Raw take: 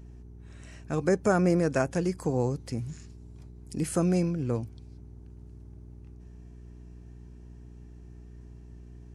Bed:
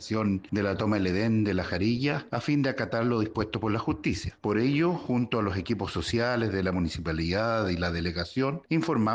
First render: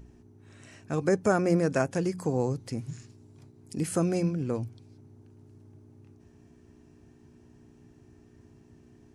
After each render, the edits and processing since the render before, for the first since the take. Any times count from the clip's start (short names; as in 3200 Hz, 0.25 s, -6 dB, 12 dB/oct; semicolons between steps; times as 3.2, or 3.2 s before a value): de-hum 60 Hz, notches 3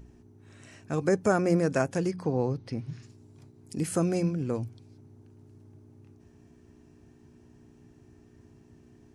2.11–3.03 polynomial smoothing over 15 samples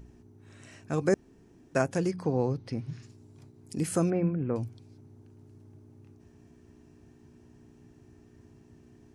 1.14–1.75 room tone; 4.1–4.56 LPF 2300 Hz 24 dB/oct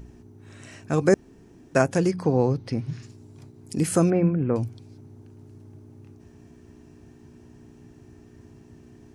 gain +6.5 dB